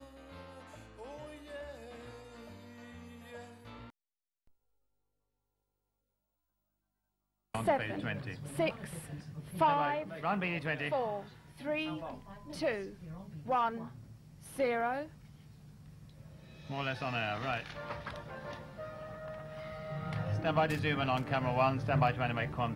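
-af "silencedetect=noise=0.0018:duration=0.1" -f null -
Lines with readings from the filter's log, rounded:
silence_start: 3.90
silence_end: 7.54 | silence_duration: 3.64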